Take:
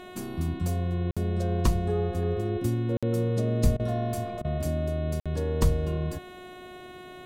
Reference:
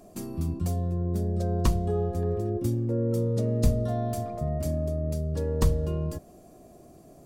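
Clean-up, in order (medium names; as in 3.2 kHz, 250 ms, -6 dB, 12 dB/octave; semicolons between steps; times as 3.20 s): de-hum 364.5 Hz, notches 11; interpolate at 1.11/2.97/5.20 s, 56 ms; interpolate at 3.77/4.42 s, 24 ms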